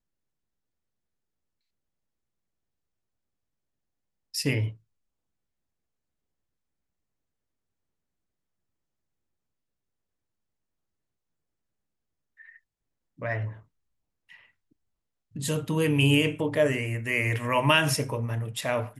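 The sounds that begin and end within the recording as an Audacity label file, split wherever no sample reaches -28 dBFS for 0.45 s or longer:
4.350000	4.680000	sound
13.230000	13.470000	sound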